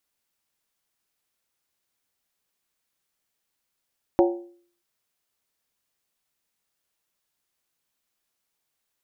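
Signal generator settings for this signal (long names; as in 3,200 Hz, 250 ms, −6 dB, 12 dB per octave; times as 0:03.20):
struck skin, lowest mode 348 Hz, decay 0.52 s, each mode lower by 4.5 dB, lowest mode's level −13 dB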